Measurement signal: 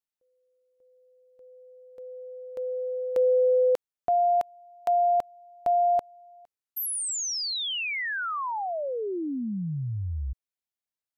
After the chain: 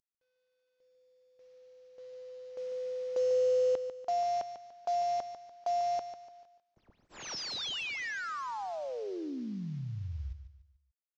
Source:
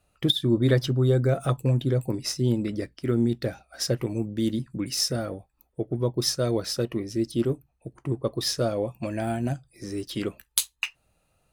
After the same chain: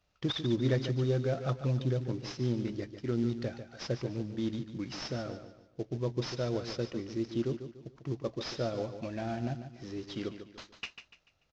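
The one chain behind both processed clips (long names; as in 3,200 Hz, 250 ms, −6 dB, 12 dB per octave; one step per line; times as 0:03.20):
variable-slope delta modulation 32 kbit/s
repeating echo 146 ms, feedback 36%, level −10 dB
level −7.5 dB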